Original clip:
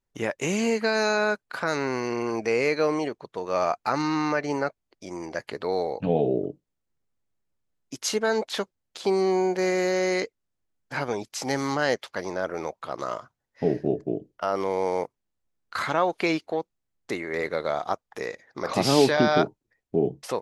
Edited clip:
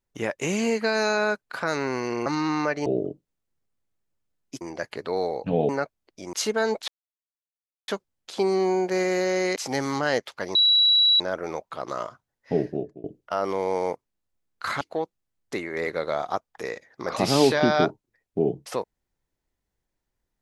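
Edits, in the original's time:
0:02.26–0:03.93: remove
0:04.53–0:05.17: swap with 0:06.25–0:08.00
0:08.55: splice in silence 1.00 s
0:10.23–0:11.32: remove
0:12.31: insert tone 3,910 Hz −15 dBFS 0.65 s
0:13.70–0:14.15: fade out, to −23 dB
0:15.92–0:16.38: remove

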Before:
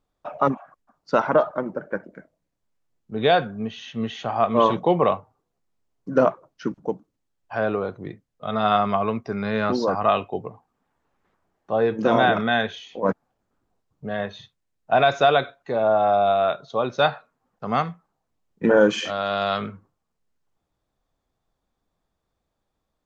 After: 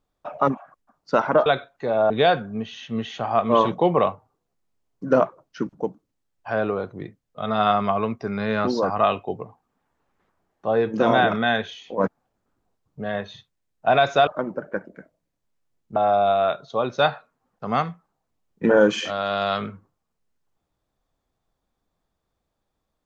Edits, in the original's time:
0:01.46–0:03.15: swap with 0:15.32–0:15.96

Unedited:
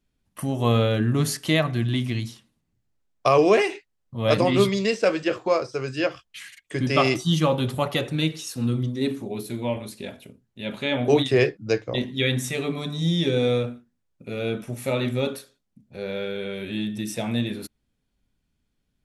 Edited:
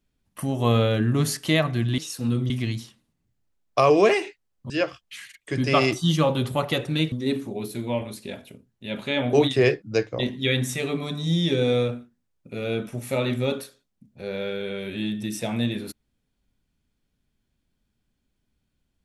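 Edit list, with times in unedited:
0:04.18–0:05.93: remove
0:08.35–0:08.87: move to 0:01.98

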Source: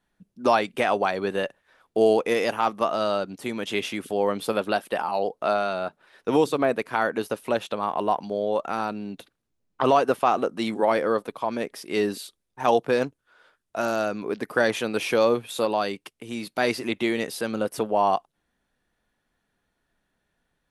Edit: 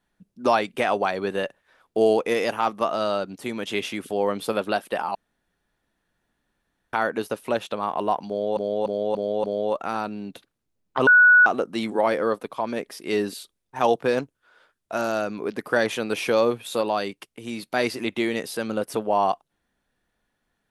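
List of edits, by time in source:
0:05.15–0:06.93: fill with room tone
0:08.28–0:08.57: repeat, 5 plays
0:09.91–0:10.30: beep over 1,470 Hz −10 dBFS

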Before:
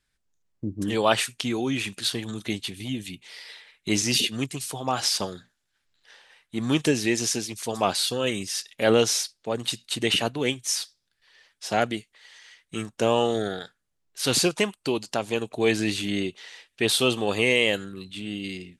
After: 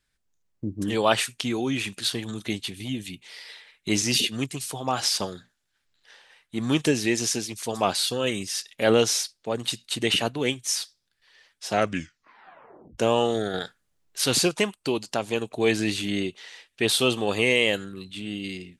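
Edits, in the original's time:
0:11.72: tape stop 1.26 s
0:13.54–0:14.24: clip gain +5.5 dB

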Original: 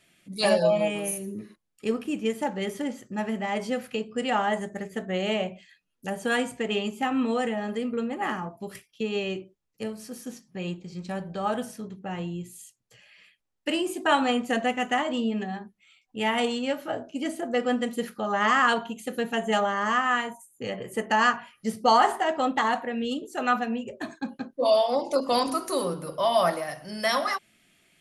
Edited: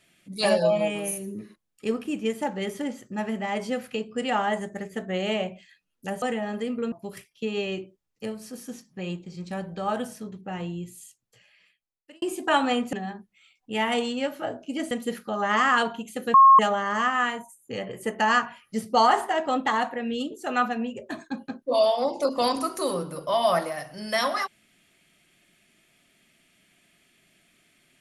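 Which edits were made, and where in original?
0:06.22–0:07.37: remove
0:08.07–0:08.50: remove
0:12.55–0:13.80: fade out
0:14.51–0:15.39: remove
0:17.37–0:17.82: remove
0:19.25–0:19.50: beep over 1,080 Hz −9.5 dBFS

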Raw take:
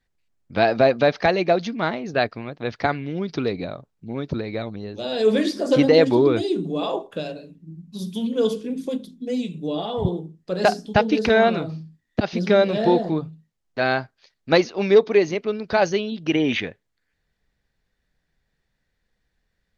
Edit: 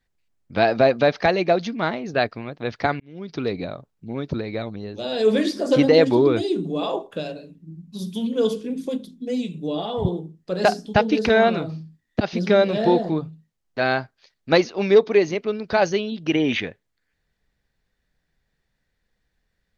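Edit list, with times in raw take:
0:03.00–0:03.53: fade in

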